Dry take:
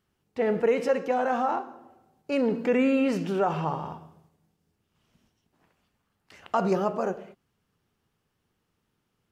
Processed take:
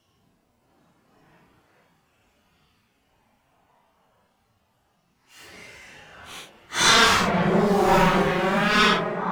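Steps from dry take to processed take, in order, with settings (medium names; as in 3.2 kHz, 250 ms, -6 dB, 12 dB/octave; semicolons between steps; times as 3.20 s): self-modulated delay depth 0.95 ms; repeats whose band climbs or falls 396 ms, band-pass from 760 Hz, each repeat 1.4 oct, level -1 dB; Paulstretch 6.1×, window 0.05 s, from 5.42 s; trim +7 dB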